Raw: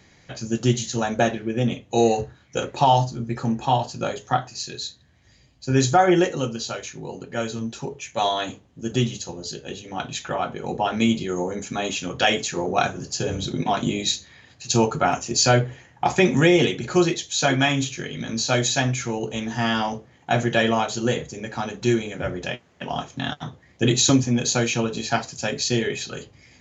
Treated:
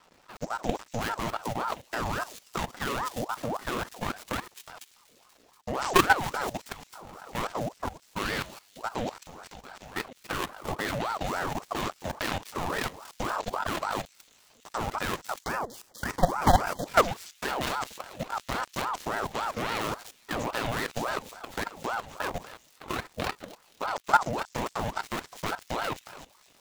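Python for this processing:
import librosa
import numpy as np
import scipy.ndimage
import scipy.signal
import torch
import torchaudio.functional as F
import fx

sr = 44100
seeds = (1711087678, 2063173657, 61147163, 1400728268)

y = fx.dead_time(x, sr, dead_ms=0.25)
y = fx.echo_wet_highpass(y, sr, ms=240, feedback_pct=59, hz=4700.0, wet_db=-7.5)
y = fx.level_steps(y, sr, step_db=15)
y = fx.spec_erase(y, sr, start_s=15.43, length_s=1.43, low_hz=1600.0, high_hz=3500.0)
y = fx.ring_lfo(y, sr, carrier_hz=750.0, swing_pct=55, hz=3.6)
y = y * 10.0 ** (2.5 / 20.0)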